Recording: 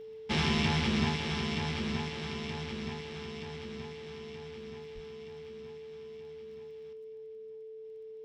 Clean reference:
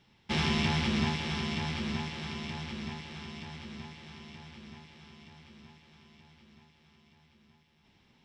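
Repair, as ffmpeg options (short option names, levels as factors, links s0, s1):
-filter_complex "[0:a]adeclick=t=4,bandreject=f=440:w=30,asplit=3[s0][s1][s2];[s0]afade=t=out:st=4.94:d=0.02[s3];[s1]highpass=f=140:w=0.5412,highpass=f=140:w=1.3066,afade=t=in:st=4.94:d=0.02,afade=t=out:st=5.06:d=0.02[s4];[s2]afade=t=in:st=5.06:d=0.02[s5];[s3][s4][s5]amix=inputs=3:normalize=0,asetnsamples=n=441:p=0,asendcmd='6.93 volume volume 9.5dB',volume=1"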